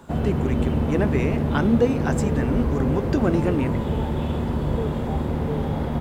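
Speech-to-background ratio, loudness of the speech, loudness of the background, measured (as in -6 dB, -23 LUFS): -1.0 dB, -25.5 LUFS, -24.5 LUFS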